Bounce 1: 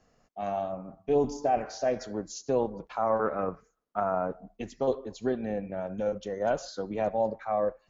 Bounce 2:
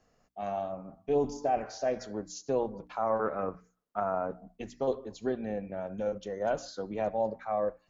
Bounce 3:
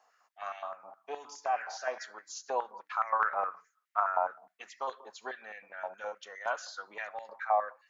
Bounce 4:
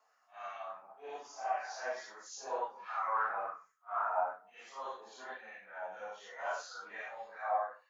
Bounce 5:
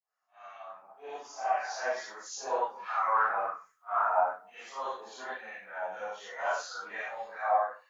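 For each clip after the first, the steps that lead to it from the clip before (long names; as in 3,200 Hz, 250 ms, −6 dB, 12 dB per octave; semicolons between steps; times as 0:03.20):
mains-hum notches 60/120/180/240/300 Hz; level −2.5 dB
high-pass on a step sequencer 9.6 Hz 870–2,000 Hz
random phases in long frames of 200 ms; level −4 dB
fade in at the beginning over 1.65 s; level +6.5 dB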